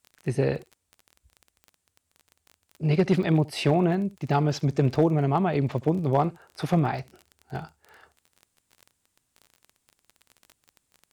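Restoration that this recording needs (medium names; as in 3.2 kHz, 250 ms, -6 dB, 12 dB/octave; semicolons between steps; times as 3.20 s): clip repair -11 dBFS; de-click; inverse comb 70 ms -22.5 dB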